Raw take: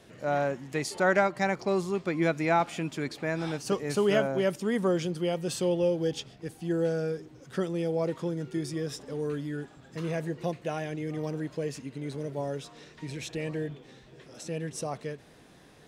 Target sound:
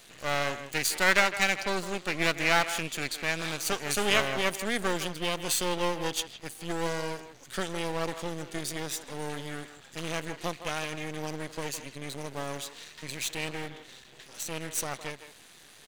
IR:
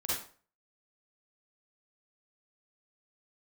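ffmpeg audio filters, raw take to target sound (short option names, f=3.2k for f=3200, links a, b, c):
-filter_complex "[0:a]asuperstop=centerf=5300:order=4:qfactor=7.4,aeval=exprs='max(val(0),0)':c=same,tiltshelf=f=1.4k:g=-9,asplit=2[a][b];[b]adelay=160,highpass=300,lowpass=3.4k,asoftclip=type=hard:threshold=-21dB,volume=-11dB[c];[a][c]amix=inputs=2:normalize=0,volume=6dB"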